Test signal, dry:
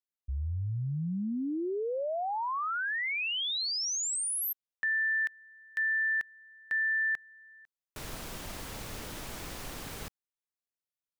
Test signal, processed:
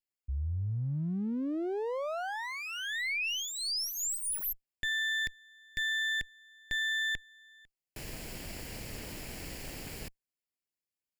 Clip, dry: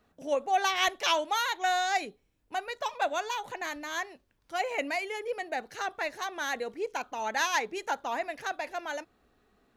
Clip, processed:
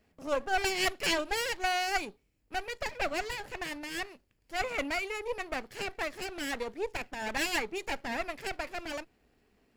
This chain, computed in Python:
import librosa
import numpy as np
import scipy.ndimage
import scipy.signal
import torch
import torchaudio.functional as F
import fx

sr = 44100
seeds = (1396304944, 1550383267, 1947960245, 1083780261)

y = fx.lower_of_two(x, sr, delay_ms=0.41)